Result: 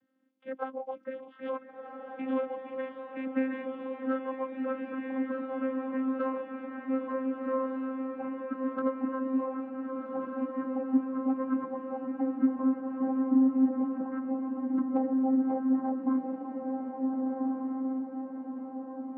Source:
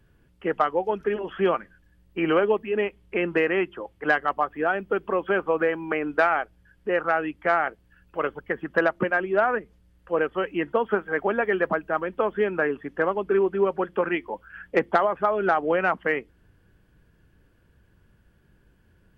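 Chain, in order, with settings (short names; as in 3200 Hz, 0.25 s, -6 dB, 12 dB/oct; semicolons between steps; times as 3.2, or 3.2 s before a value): gliding pitch shift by -12 st starting unshifted; vocoder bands 16, saw 263 Hz; diffused feedback echo 1.446 s, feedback 57%, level -3 dB; gain -6 dB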